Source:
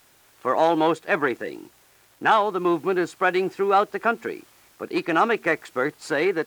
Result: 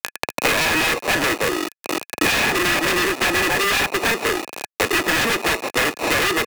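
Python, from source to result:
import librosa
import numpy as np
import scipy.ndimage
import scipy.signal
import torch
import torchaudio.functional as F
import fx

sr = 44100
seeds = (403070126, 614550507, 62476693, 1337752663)

y = fx.reverse_delay(x, sr, ms=202, wet_db=-7.0, at=(1.58, 3.86))
y = fx.sample_hold(y, sr, seeds[0], rate_hz=1600.0, jitter_pct=0)
y = fx.air_absorb(y, sr, metres=71.0)
y = 10.0 ** (-13.5 / 20.0) * np.tanh(y / 10.0 ** (-13.5 / 20.0))
y = fx.high_shelf(y, sr, hz=6200.0, db=10.0)
y = fx.quant_dither(y, sr, seeds[1], bits=8, dither='none')
y = scipy.signal.sosfilt(scipy.signal.butter(2, 370.0, 'highpass', fs=sr, output='sos'), y)
y = fx.fold_sine(y, sr, drive_db=19, ceiling_db=-12.0)
y = fx.small_body(y, sr, hz=(1700.0, 2500.0), ring_ms=30, db=12)
y = fx.band_squash(y, sr, depth_pct=100)
y = F.gain(torch.from_numpy(y), -5.0).numpy()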